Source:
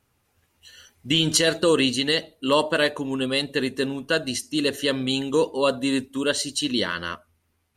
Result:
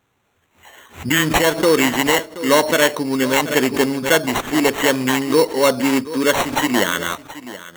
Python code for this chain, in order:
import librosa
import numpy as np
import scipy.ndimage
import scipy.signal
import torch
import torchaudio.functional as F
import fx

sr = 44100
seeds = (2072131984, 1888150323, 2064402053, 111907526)

p1 = scipy.signal.sosfilt(scipy.signal.butter(2, 79.0, 'highpass', fs=sr, output='sos'), x)
p2 = fx.low_shelf(p1, sr, hz=120.0, db=-6.5)
p3 = fx.rider(p2, sr, range_db=10, speed_s=0.5)
p4 = p2 + (p3 * 10.0 ** (1.0 / 20.0))
p5 = fx.sample_hold(p4, sr, seeds[0], rate_hz=4900.0, jitter_pct=0)
p6 = p5 + fx.echo_single(p5, sr, ms=727, db=-16.0, dry=0)
y = fx.pre_swell(p6, sr, db_per_s=150.0)